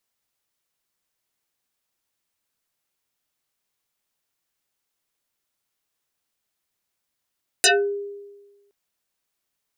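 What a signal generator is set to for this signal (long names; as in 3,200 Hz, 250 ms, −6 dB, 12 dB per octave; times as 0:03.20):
two-operator FM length 1.07 s, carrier 404 Hz, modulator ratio 2.74, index 10, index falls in 0.28 s exponential, decay 1.28 s, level −11 dB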